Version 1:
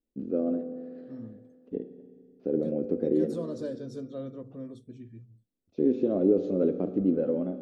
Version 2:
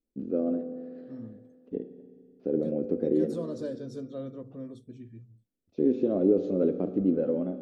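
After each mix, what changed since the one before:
none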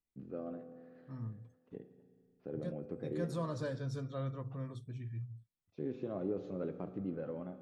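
first voice -9.0 dB; master: add graphic EQ 125/250/500/1000/2000 Hz +10/-9/-6/+9/+6 dB

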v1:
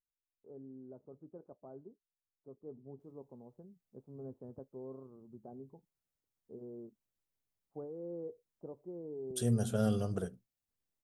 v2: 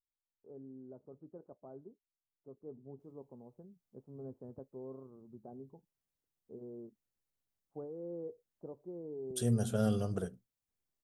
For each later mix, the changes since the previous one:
none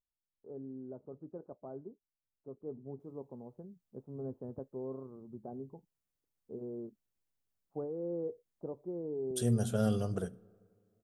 first voice +5.5 dB; reverb: on, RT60 2.3 s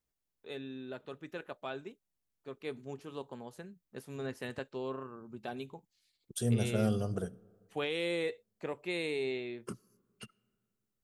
first voice: remove Gaussian blur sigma 12 samples; second voice: entry -3.00 s

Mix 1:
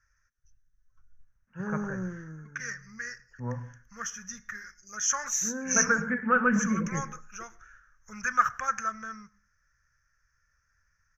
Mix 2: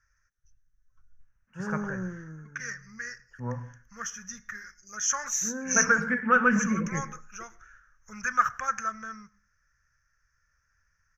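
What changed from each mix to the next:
first voice: remove air absorption 420 m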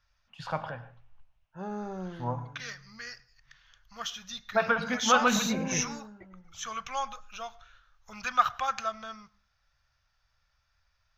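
first voice: entry -1.20 s; master: remove EQ curve 110 Hz 0 dB, 200 Hz +5 dB, 290 Hz 0 dB, 490 Hz +1 dB, 720 Hz -14 dB, 1700 Hz +9 dB, 4000 Hz -27 dB, 5900 Hz +8 dB, 10000 Hz -3 dB

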